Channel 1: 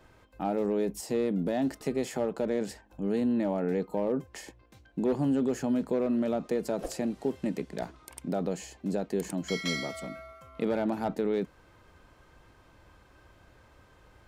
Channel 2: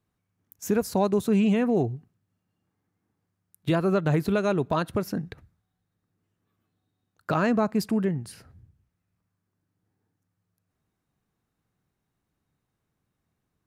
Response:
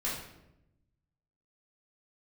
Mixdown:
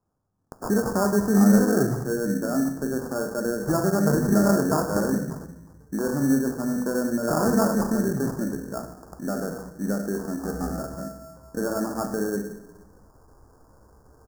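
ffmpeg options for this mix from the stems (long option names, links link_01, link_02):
-filter_complex "[0:a]adelay=950,volume=-2dB,asplit=2[link_01][link_02];[link_02]volume=-5dB[link_03];[1:a]highshelf=frequency=4100:gain=8.5,volume=-3dB,asplit=2[link_04][link_05];[link_05]volume=-6dB[link_06];[2:a]atrim=start_sample=2205[link_07];[link_03][link_06]amix=inputs=2:normalize=0[link_08];[link_08][link_07]afir=irnorm=-1:irlink=0[link_09];[link_01][link_04][link_09]amix=inputs=3:normalize=0,acrusher=samples=22:mix=1:aa=0.000001,asuperstop=centerf=2900:order=8:qfactor=0.79"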